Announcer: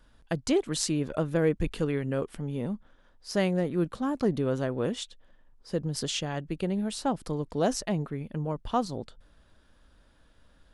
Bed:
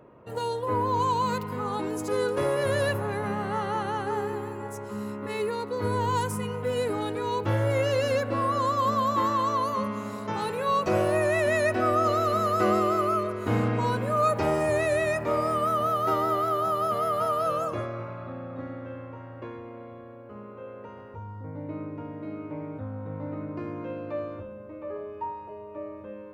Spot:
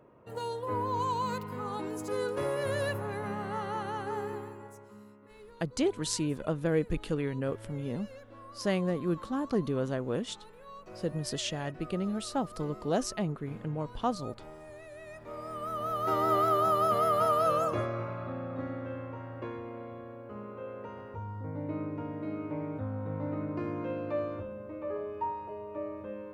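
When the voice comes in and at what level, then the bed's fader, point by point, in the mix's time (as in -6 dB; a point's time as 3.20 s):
5.30 s, -3.0 dB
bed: 4.35 s -6 dB
5.31 s -23.5 dB
14.91 s -23.5 dB
16.36 s 0 dB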